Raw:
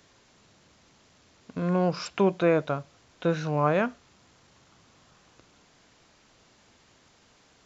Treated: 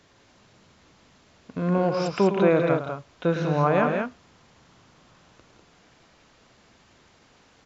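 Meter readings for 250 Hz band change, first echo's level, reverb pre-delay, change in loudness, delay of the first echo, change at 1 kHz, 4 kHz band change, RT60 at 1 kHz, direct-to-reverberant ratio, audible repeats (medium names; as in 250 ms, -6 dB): +3.5 dB, -9.5 dB, no reverb, +3.0 dB, 108 ms, +3.5 dB, +1.0 dB, no reverb, no reverb, 3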